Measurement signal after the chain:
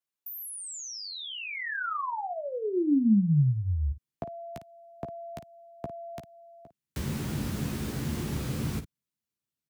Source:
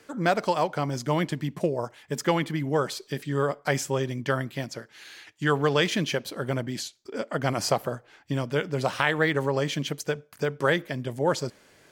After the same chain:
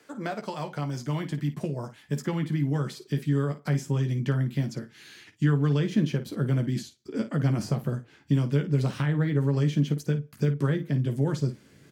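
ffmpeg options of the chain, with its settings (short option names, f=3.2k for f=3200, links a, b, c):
-filter_complex "[0:a]acrossover=split=250|1400[a][b][c];[a]acompressor=threshold=-36dB:ratio=4[d];[b]acompressor=threshold=-29dB:ratio=4[e];[c]acompressor=threshold=-39dB:ratio=4[f];[d][e][f]amix=inputs=3:normalize=0,highpass=120,asubboost=boost=9:cutoff=220,asplit=2[g][h];[h]aecho=0:1:14|54:0.447|0.251[i];[g][i]amix=inputs=2:normalize=0,volume=-3.5dB"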